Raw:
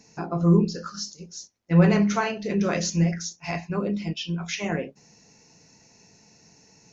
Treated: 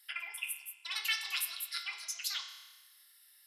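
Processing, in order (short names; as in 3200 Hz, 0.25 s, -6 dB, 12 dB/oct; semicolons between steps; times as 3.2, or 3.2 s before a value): limiter -14.5 dBFS, peak gain reduction 7 dB; ladder high-pass 970 Hz, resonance 40%; spring tank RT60 2.5 s, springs 55 ms, chirp 70 ms, DRR 6 dB; speed mistake 7.5 ips tape played at 15 ips; gain +3 dB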